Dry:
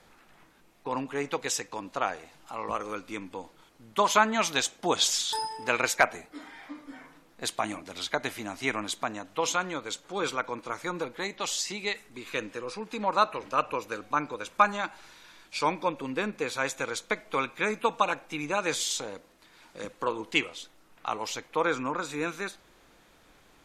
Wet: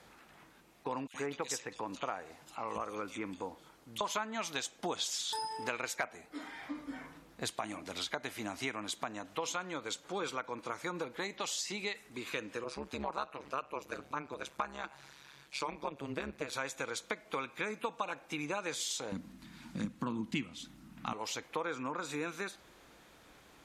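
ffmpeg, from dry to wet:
-filter_complex "[0:a]asettb=1/sr,asplit=3[s0][s1][s2];[s0]atrim=end=1.074[s3];[s1]atrim=start=1.07:end=4.01,asetpts=PTS-STARTPTS,afade=t=in:d=0.004:c=qsin,afade=t=out:st=2.936:d=0.004:c=qsin,acrossover=split=2600[s4][s5];[s4]adelay=70[s6];[s6][s5]amix=inputs=2:normalize=0,atrim=end_sample=129654[s7];[s2]atrim=start=4.006[s8];[s3][s7]acrossfade=d=0.004:c1=hsin:c2=qsin[s9];[s9][s8]acrossfade=d=0.004:c1=qsin:c2=hsin,asettb=1/sr,asplit=3[s10][s11][s12];[s10]atrim=end=6.624[s13];[s11]atrim=start=6.62:end=7.52,asetpts=PTS-STARTPTS,afade=t=in:d=0.004:c=qsin,afade=t=out:st=0.896:d=0.004:c=qsin,equalizer=f=66:t=o:w=2.4:g=10[s14];[s12]atrim=start=7.516[s15];[s13][s14]acrossfade=d=0.004:c1=hsin:c2=qsin[s16];[s16][s15]acrossfade=d=0.004:c1=qsin:c2=hsin,asettb=1/sr,asplit=3[s17][s18][s19];[s17]atrim=end=12.644[s20];[s18]atrim=start=12.64:end=16.53,asetpts=PTS-STARTPTS,afade=t=in:d=0.004:c=qsin,afade=t=out:st=3.886:d=0.004:c=qsin,tremolo=f=140:d=0.947[s21];[s19]atrim=start=16.526[s22];[s20][s21]acrossfade=d=0.004:c1=hsin:c2=qsin[s23];[s23][s22]acrossfade=d=0.004:c1=qsin:c2=hsin,asettb=1/sr,asplit=3[s24][s25][s26];[s24]atrim=end=19.124[s27];[s25]atrim=start=19.12:end=21.13,asetpts=PTS-STARTPTS,afade=t=in:d=0.004:c=qsin,afade=t=out:st=2.006:d=0.004:c=qsin,lowshelf=f=320:t=q:w=3:g=12[s28];[s26]atrim=start=21.126[s29];[s27][s28]acrossfade=d=0.004:c1=hsin:c2=qsin[s30];[s30][s29]acrossfade=d=0.004:c1=qsin:c2=hsin,highpass=40,acompressor=threshold=0.0178:ratio=4"

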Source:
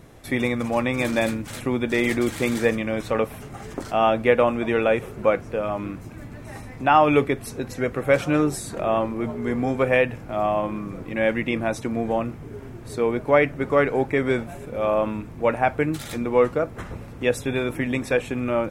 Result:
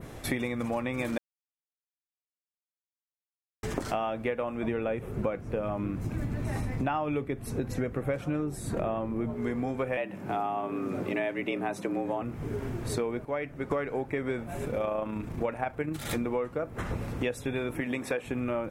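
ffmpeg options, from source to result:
-filter_complex "[0:a]asettb=1/sr,asplit=3[s0][s1][s2];[s0]atrim=end=4.634[s3];[s1]atrim=start=4.63:end=9.34,asetpts=PTS-STARTPTS,afade=t=in:d=0.004:c=qsin,afade=t=out:st=4.706:d=0.004:c=qsin,lowshelf=f=350:g=8[s4];[s2]atrim=start=9.336[s5];[s3][s4]acrossfade=d=0.004:c1=hsin:c2=qsin[s6];[s6][s5]acrossfade=d=0.004:c1=qsin:c2=hsin,asettb=1/sr,asplit=3[s7][s8][s9];[s7]atrim=end=9.974[s10];[s8]atrim=start=9.97:end=12.22,asetpts=PTS-STARTPTS,afade=t=in:d=0.004:c=qsin,afade=t=out:st=2.246:d=0.004:c=qsin,afreqshift=79[s11];[s9]atrim=start=12.216[s12];[s10][s11]acrossfade=d=0.004:c1=hsin:c2=qsin[s13];[s13][s12]acrossfade=d=0.004:c1=qsin:c2=hsin,asettb=1/sr,asplit=3[s14][s15][s16];[s14]atrim=end=14.674[s17];[s15]atrim=start=14.67:end=16.05,asetpts=PTS-STARTPTS,afade=t=in:d=0.004:c=qsin,afade=t=out:st=1.376:d=0.004:c=qsin,tremolo=f=28:d=0.4[s18];[s16]atrim=start=16.046[s19];[s17][s18]acrossfade=d=0.004:c1=hsin:c2=qsin[s20];[s20][s19]acrossfade=d=0.004:c1=qsin:c2=hsin,asettb=1/sr,asplit=3[s21][s22][s23];[s21]atrim=end=17.804[s24];[s22]atrim=start=17.8:end=18.25,asetpts=PTS-STARTPTS,afade=t=in:d=0.004:c=qsin,afade=t=out:st=0.446:d=0.004:c=qsin,highpass=f=260:p=1[s25];[s23]atrim=start=18.246[s26];[s24][s25]acrossfade=d=0.004:c1=hsin:c2=qsin[s27];[s27][s26]acrossfade=d=0.004:c1=qsin:c2=hsin,asplit=5[s28][s29][s30][s31][s32];[s28]atrim=end=1.18,asetpts=PTS-STARTPTS,afade=t=out:st=1.176:d=0.004:c=hsin[s33];[s29]atrim=start=1.18:end=3.63,asetpts=PTS-STARTPTS,volume=0[s34];[s30]atrim=start=3.63:end=13.252,asetpts=PTS-STARTPTS,afade=t=in:d=0.004:c=hsin[s35];[s31]atrim=start=13.248:end=13.712,asetpts=PTS-STARTPTS,volume=0.266[s36];[s32]atrim=start=13.708[s37];[s33][s34][s35]concat=n=3:v=0:a=1[s38];[s38][s36]acrossfade=d=0.004:c1=hsin:c2=hsin[s39];[s39][s37]acrossfade=d=0.004:c1=hsin:c2=hsin,adynamicequalizer=threshold=0.00562:dfrequency=5300:dqfactor=0.77:tfrequency=5300:tqfactor=0.77:attack=5:release=100:ratio=0.375:range=3:mode=cutabove:tftype=bell,acompressor=threshold=0.0251:ratio=12,volume=1.68"

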